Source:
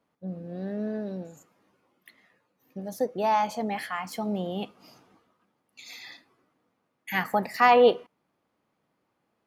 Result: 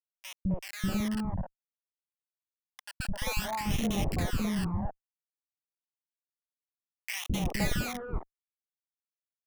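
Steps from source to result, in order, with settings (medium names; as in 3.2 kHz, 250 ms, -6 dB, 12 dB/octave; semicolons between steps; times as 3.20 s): Schmitt trigger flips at -32 dBFS; phase shifter stages 12, 0.58 Hz, lowest notch 360–1600 Hz; three bands offset in time highs, lows, mids 210/260 ms, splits 350/1100 Hz; trim +3 dB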